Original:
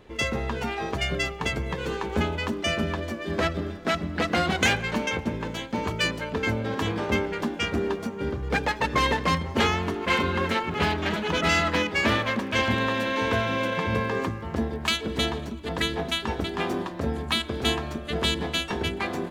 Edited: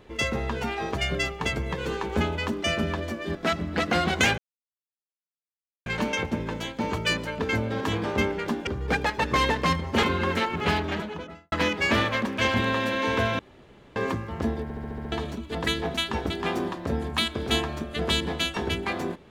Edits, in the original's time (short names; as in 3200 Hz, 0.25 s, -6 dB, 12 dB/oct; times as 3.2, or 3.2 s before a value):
3.35–3.77 cut
4.8 insert silence 1.48 s
7.61–8.29 cut
9.65–10.17 cut
10.84–11.66 studio fade out
13.53–14.1 room tone
14.77 stutter in place 0.07 s, 7 plays